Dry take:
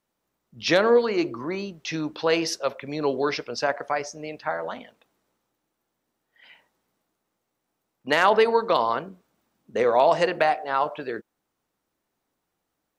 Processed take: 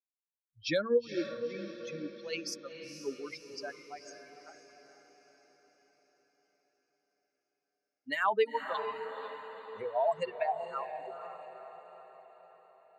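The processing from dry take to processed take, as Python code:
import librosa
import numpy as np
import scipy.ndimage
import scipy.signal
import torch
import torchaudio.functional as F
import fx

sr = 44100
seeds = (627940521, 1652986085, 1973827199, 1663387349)

y = fx.bin_expand(x, sr, power=3.0)
y = fx.echo_diffused(y, sr, ms=480, feedback_pct=54, wet_db=-9.0)
y = y * 10.0 ** (-6.0 / 20.0)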